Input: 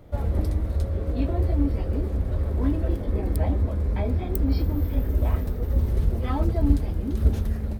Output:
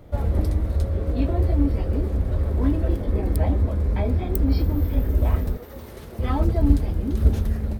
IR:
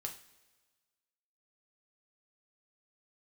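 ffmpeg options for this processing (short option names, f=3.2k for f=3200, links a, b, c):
-filter_complex "[0:a]asettb=1/sr,asplit=3[a][b][c];[a]atrim=end=5.574[d];[b]atrim=start=5.57:end=6.19,asetpts=PTS-STARTPTS,afade=t=in:d=0.004:c=qsin,afade=t=out:st=0.616:d=0.004:c=qsin,highpass=f=870:p=1[e];[c]atrim=start=6.186[f];[d][e]acrossfade=d=0.004:c1=hsin:c2=qsin[g];[g][f]acrossfade=d=0.004:c1=qsin:c2=hsin,volume=2.5dB"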